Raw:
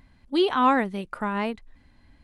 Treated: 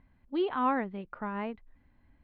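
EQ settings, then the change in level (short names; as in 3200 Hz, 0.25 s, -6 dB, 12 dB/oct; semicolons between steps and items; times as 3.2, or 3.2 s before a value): Bessel low-pass 2100 Hz, order 4; -7.5 dB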